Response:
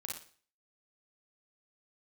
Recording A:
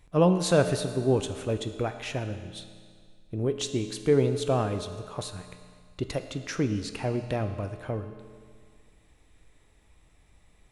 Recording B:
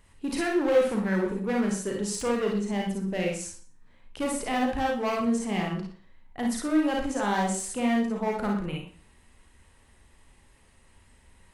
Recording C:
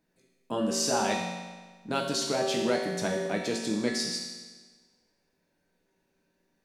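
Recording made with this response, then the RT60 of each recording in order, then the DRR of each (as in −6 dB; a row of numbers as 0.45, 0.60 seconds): B; 2.0, 0.45, 1.4 seconds; 7.5, −1.0, −2.0 decibels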